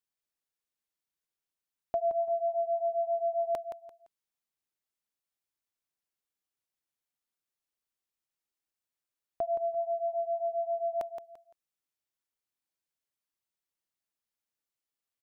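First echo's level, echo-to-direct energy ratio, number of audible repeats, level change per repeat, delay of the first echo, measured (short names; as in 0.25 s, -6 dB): -9.0 dB, -8.5 dB, 3, -11.0 dB, 0.171 s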